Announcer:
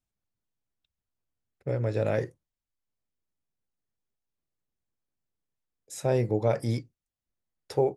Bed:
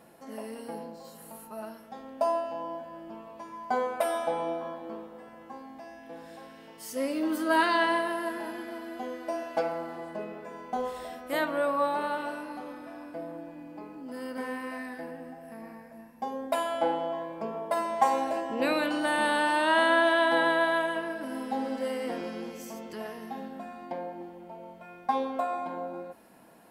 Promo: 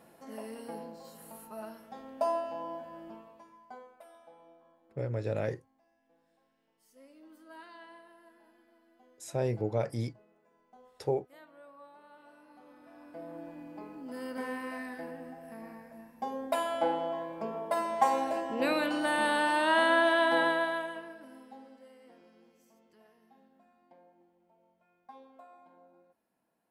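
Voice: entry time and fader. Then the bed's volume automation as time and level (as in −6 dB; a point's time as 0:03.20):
3.30 s, −5.5 dB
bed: 0:03.07 −3 dB
0:03.99 −26.5 dB
0:12.03 −26.5 dB
0:13.45 −2 dB
0:20.43 −2 dB
0:21.88 −24 dB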